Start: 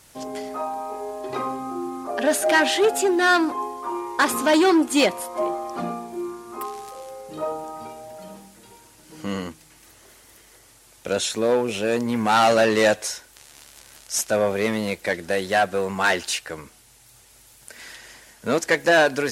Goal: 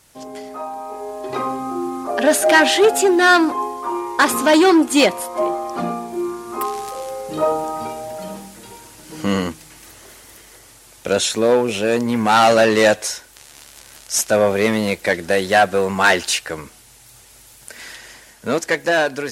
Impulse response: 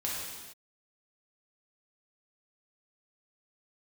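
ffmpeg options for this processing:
-af "dynaudnorm=f=270:g=9:m=11.5dB,volume=-1.5dB"

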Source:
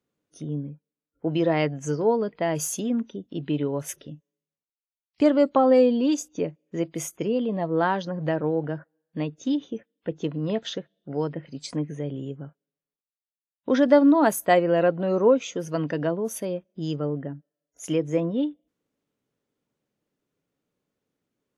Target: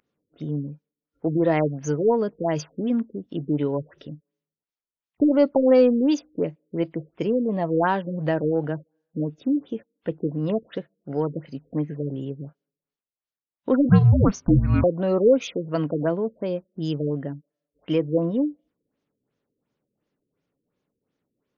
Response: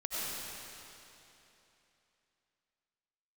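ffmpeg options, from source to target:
-filter_complex "[0:a]asplit=2[a][b];[b]asoftclip=type=tanh:threshold=-17dB,volume=-9.5dB[c];[a][c]amix=inputs=2:normalize=0,asettb=1/sr,asplit=3[d][e][f];[d]atrim=end=13.894[g];[e]atrim=start=13.89:end=14.84,asetpts=PTS-STARTPTS,afade=t=in:d=0.004:c=qsin,afade=t=out:st=0.946:d=0.004:c=qsin,afreqshift=-400[h];[f]atrim=start=14.836[i];[g][h]acrossfade=d=0.004:c1=hsin:c2=qsin[j];[j][i]acrossfade=d=0.004:c1=qsin:c2=hsin,aeval=exprs='val(0)+0.0447*sin(2*PI*12000*n/s)':c=same,afftfilt=real='re*lt(b*sr/1024,510*pow(7200/510,0.5+0.5*sin(2*PI*2.8*pts/sr)))':imag='im*lt(b*sr/1024,510*pow(7200/510,0.5+0.5*sin(2*PI*2.8*pts/sr)))':win_size=1024:overlap=0.75"

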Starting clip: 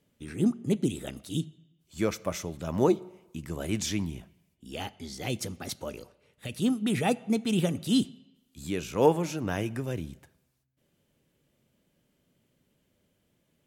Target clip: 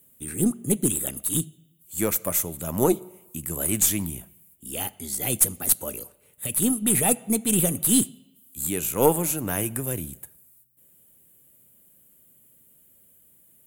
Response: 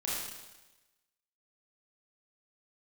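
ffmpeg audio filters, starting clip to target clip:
-af "aexciter=amount=10.2:drive=7.9:freq=7.9k,aeval=exprs='0.631*(cos(1*acos(clip(val(0)/0.631,-1,1)))-cos(1*PI/2))+0.0282*(cos(6*acos(clip(val(0)/0.631,-1,1)))-cos(6*PI/2))':c=same,volume=2dB"

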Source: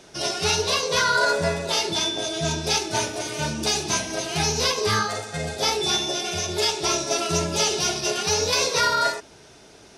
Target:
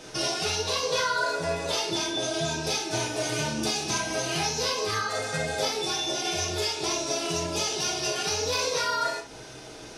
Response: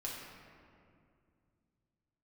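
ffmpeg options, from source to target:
-filter_complex "[0:a]acompressor=threshold=-31dB:ratio=6[a];[1:a]atrim=start_sample=2205,atrim=end_sample=3528[b];[a][b]afir=irnorm=-1:irlink=0,volume=7.5dB"

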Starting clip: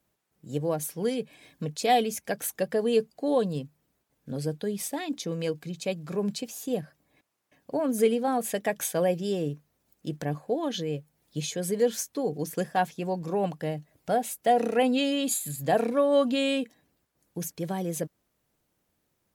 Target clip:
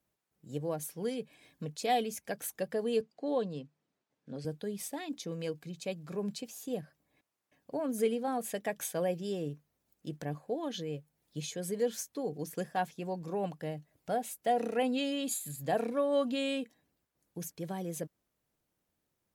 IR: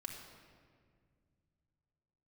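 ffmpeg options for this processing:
-filter_complex "[0:a]asettb=1/sr,asplit=3[a][b][c];[a]atrim=end=3.014[d];[b]atrim=start=3.01:end=4.45,asetpts=PTS-STARTPTS,afade=t=in:d=0.004:c=qsin,afade=t=out:st=1.436:d=0.004:c=qsin,highpass=160,lowpass=5.6k[e];[c]atrim=start=4.446[f];[d][e]acrossfade=d=0.004:c1=hsin:c2=qsin[g];[g][f]acrossfade=d=0.004:c1=qsin:c2=hsin,volume=-7dB"

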